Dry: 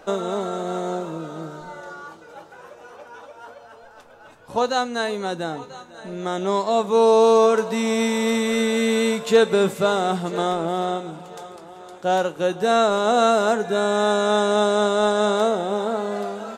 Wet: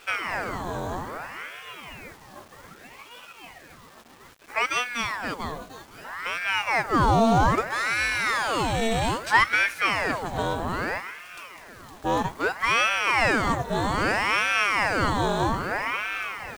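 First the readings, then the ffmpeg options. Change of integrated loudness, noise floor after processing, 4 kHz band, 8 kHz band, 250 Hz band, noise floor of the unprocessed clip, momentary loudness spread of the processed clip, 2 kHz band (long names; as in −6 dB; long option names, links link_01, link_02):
−3.5 dB, −49 dBFS, −2.0 dB, −3.5 dB, −6.0 dB, −46 dBFS, 19 LU, +6.0 dB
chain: -af "aeval=exprs='if(lt(val(0),0),0.708*val(0),val(0))':channel_layout=same,acrusher=bits=7:mix=0:aa=0.000001,aeval=exprs='val(0)*sin(2*PI*1100*n/s+1100*0.8/0.62*sin(2*PI*0.62*n/s))':channel_layout=same"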